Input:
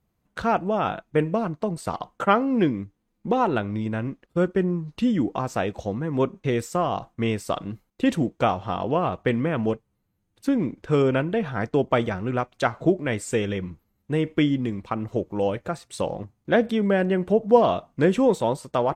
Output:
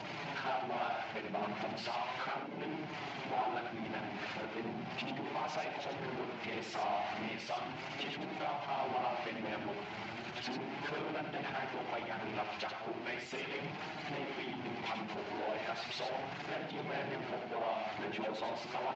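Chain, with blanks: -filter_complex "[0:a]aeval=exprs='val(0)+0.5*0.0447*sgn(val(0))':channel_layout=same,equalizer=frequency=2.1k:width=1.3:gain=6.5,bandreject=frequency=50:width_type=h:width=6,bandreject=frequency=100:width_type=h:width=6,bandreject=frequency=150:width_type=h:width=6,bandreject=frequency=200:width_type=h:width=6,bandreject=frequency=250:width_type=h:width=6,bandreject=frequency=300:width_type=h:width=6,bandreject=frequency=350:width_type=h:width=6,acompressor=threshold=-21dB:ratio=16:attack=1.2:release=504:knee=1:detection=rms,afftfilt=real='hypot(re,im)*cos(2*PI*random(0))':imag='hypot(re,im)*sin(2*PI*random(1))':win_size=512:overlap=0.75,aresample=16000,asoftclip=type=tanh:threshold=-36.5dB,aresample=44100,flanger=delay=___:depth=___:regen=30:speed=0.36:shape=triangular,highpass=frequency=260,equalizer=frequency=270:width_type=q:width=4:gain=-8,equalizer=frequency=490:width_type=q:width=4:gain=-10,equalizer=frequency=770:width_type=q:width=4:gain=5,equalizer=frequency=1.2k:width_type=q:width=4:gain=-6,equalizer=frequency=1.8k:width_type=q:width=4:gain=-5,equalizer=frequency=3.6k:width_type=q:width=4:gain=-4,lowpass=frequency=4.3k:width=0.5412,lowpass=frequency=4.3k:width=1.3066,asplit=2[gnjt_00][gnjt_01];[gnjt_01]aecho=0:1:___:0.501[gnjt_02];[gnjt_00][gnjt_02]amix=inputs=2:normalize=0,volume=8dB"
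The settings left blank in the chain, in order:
6.3, 3.5, 90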